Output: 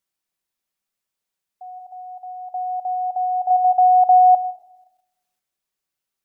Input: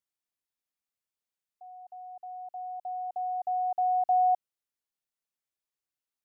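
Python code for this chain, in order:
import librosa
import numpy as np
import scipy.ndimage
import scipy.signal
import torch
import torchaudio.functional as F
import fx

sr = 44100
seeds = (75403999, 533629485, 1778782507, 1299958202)

p1 = fx.highpass(x, sr, hz=720.0, slope=12, at=(1.78, 2.5), fade=0.02)
p2 = fx.room_shoebox(p1, sr, seeds[0], volume_m3=3800.0, walls='furnished', distance_m=1.1)
p3 = fx.level_steps(p2, sr, step_db=13)
p4 = p2 + F.gain(torch.from_numpy(p3), 2.0).numpy()
y = F.gain(torch.from_numpy(p4), 5.0).numpy()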